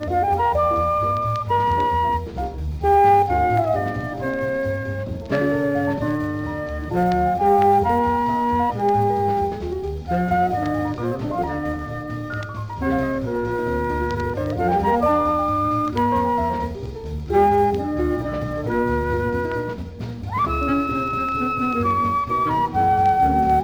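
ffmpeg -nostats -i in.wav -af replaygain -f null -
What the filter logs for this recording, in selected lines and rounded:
track_gain = +2.1 dB
track_peak = 0.345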